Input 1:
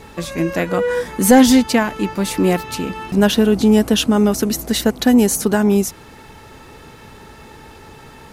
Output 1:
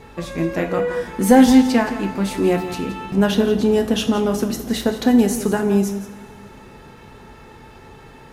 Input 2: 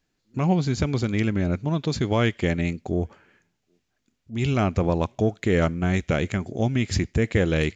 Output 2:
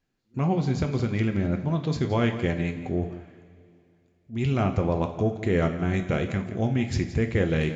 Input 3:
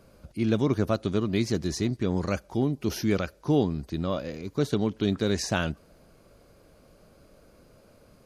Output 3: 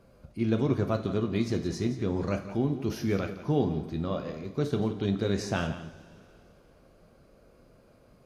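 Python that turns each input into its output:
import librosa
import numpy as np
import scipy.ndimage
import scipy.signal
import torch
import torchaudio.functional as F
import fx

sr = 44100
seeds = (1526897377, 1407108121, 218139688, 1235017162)

p1 = fx.high_shelf(x, sr, hz=3600.0, db=-7.5)
p2 = p1 + fx.echo_single(p1, sr, ms=171, db=-13.0, dry=0)
p3 = fx.rev_double_slope(p2, sr, seeds[0], early_s=0.43, late_s=2.8, knee_db=-17, drr_db=5.5)
y = p3 * librosa.db_to_amplitude(-3.0)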